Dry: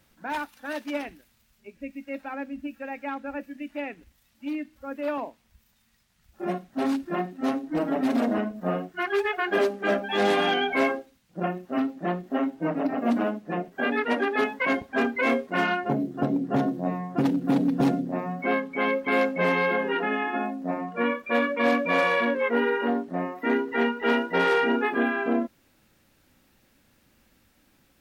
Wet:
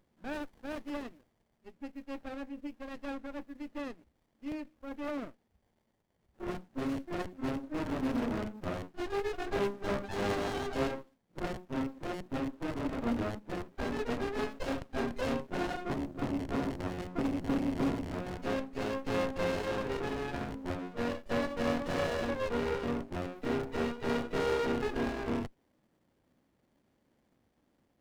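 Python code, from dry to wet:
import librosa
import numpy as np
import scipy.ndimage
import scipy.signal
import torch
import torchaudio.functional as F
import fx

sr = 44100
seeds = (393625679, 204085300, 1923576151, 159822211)

y = fx.rattle_buzz(x, sr, strikes_db=-34.0, level_db=-20.0)
y = fx.highpass(y, sr, hz=160.0, slope=6)
y = fx.running_max(y, sr, window=33)
y = y * 10.0 ** (-5.5 / 20.0)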